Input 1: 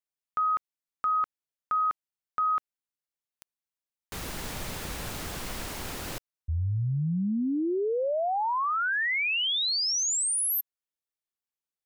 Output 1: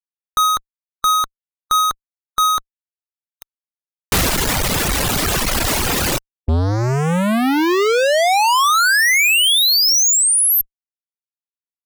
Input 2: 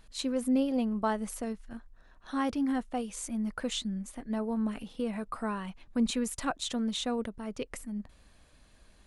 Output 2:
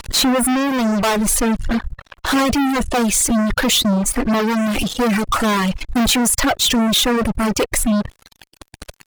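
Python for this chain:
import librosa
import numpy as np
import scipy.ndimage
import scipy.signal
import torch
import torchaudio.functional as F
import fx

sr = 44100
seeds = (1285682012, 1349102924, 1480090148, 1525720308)

y = fx.fuzz(x, sr, gain_db=51.0, gate_db=-52.0)
y = fx.dereverb_blind(y, sr, rt60_s=1.6)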